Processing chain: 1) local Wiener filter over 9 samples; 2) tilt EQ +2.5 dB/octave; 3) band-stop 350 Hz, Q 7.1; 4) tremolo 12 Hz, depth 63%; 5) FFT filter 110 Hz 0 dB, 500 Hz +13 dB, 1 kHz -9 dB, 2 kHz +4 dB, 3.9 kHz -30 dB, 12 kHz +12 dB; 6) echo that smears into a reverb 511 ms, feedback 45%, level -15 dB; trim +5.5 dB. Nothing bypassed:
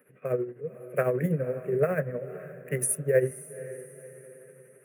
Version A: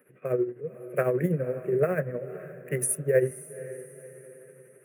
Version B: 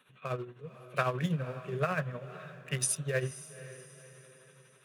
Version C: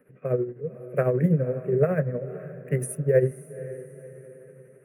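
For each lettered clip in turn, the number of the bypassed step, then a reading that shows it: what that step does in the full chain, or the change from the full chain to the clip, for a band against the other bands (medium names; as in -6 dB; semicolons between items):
3, 250 Hz band +1.5 dB; 5, 500 Hz band -8.0 dB; 2, 8 kHz band -11.0 dB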